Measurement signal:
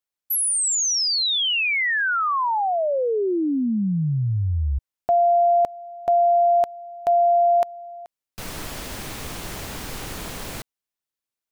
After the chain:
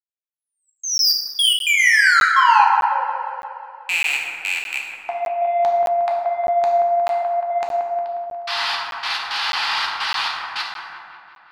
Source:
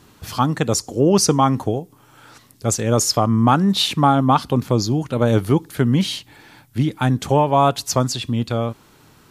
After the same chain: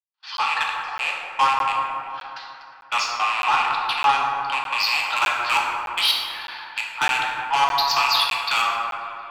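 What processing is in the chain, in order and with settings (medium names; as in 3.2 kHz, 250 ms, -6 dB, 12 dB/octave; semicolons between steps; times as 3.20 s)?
rattle on loud lows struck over -23 dBFS, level -16 dBFS; Chebyshev band-pass 830–4800 Hz, order 4; band-stop 2.2 kHz, Q 19; gate -52 dBFS, range -34 dB; tilt EQ +2 dB/octave; level rider gain up to 15.5 dB; trance gate ".xxxx.xx..x" 108 bpm -60 dB; saturation -13 dBFS; feedback echo behind a low-pass 179 ms, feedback 61%, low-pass 1.5 kHz, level -4.5 dB; plate-style reverb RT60 1.7 s, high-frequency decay 0.5×, DRR -1 dB; crackling interface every 0.61 s, samples 512, zero, from 0.37 s; trim -2.5 dB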